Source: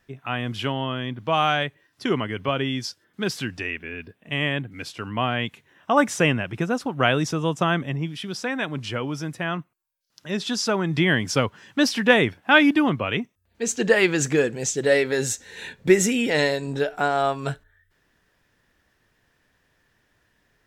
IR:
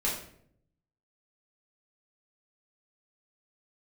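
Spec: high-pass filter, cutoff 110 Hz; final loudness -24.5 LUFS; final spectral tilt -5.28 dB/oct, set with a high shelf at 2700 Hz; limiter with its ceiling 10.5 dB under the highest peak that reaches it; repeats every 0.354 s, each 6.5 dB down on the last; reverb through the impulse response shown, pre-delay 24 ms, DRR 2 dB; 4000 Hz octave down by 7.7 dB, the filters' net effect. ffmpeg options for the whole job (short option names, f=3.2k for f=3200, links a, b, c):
-filter_complex "[0:a]highpass=110,highshelf=f=2.7k:g=-8.5,equalizer=f=4k:t=o:g=-3.5,alimiter=limit=-14.5dB:level=0:latency=1,aecho=1:1:354|708|1062|1416|1770|2124:0.473|0.222|0.105|0.0491|0.0231|0.0109,asplit=2[a][b];[1:a]atrim=start_sample=2205,adelay=24[c];[b][c]afir=irnorm=-1:irlink=0,volume=-9.5dB[d];[a][d]amix=inputs=2:normalize=0,volume=-0.5dB"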